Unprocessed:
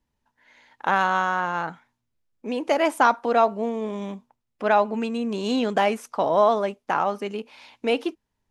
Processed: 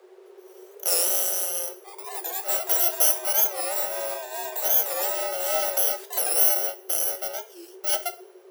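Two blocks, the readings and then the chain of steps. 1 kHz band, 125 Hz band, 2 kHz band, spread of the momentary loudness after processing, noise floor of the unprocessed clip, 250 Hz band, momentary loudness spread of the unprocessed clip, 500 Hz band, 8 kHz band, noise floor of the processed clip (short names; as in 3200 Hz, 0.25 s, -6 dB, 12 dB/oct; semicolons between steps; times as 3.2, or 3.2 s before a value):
-11.0 dB, under -40 dB, -8.0 dB, 13 LU, -79 dBFS, under -15 dB, 14 LU, -7.5 dB, +23.0 dB, -50 dBFS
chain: FFT order left unsorted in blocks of 64 samples; added noise brown -46 dBFS; echoes that change speed 0.236 s, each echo +5 st, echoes 2, each echo -6 dB; two-slope reverb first 0.34 s, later 1.5 s, from -25 dB, DRR 8.5 dB; frequency shift +360 Hz; record warp 45 rpm, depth 160 cents; gain -2.5 dB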